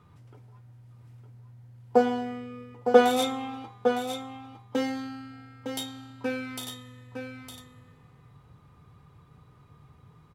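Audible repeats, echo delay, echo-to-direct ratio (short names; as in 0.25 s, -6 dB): 1, 0.909 s, -7.5 dB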